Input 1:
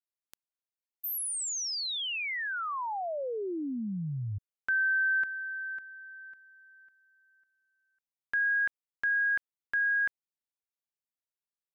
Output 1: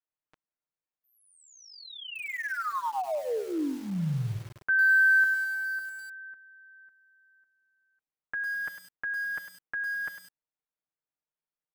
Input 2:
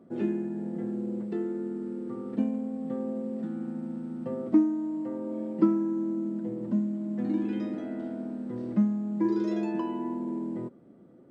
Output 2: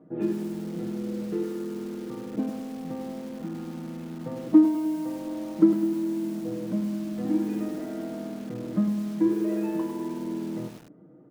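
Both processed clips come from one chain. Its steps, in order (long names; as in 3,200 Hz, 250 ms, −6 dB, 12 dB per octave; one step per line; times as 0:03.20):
low-pass filter 1,800 Hz 12 dB per octave
comb filter 6.5 ms, depth 88%
feedback echo at a low word length 102 ms, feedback 55%, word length 7 bits, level −8 dB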